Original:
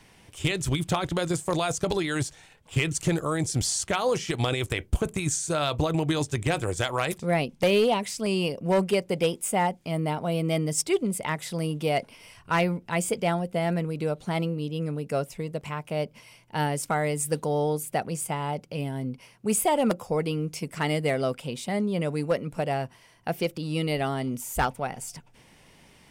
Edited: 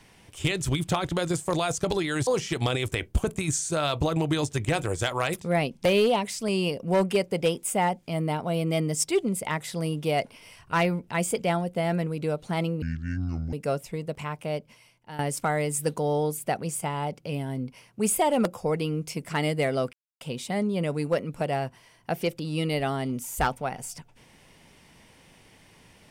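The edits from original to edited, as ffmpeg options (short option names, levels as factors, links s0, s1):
-filter_complex "[0:a]asplit=6[s0][s1][s2][s3][s4][s5];[s0]atrim=end=2.272[s6];[s1]atrim=start=4.048:end=14.604[s7];[s2]atrim=start=14.6:end=14.99,asetpts=PTS-STARTPTS,asetrate=24255,aresample=44100[s8];[s3]atrim=start=14.986:end=16.65,asetpts=PTS-STARTPTS,afade=t=out:st=0.814:d=0.85:silence=0.16788[s9];[s4]atrim=start=16.65:end=21.39,asetpts=PTS-STARTPTS,afade=t=in:d=0.004:c=hsin:silence=0.16788,afade=t=out:st=4.736:d=0.004:c=hsin,apad=pad_dur=0.28[s10];[s5]atrim=start=21.39,asetpts=PTS-STARTPTS,afade=t=in:d=0.004:c=hsin[s11];[s6][s7]acrossfade=d=0.004:c1=hsin:c2=hsin[s12];[s12][s8]acrossfade=d=0.004:c1=hsin:c2=hsin[s13];[s9][s10][s11]concat=n=3:v=0:a=1[s14];[s13][s14]acrossfade=d=0.004:c1=hsin:c2=hsin"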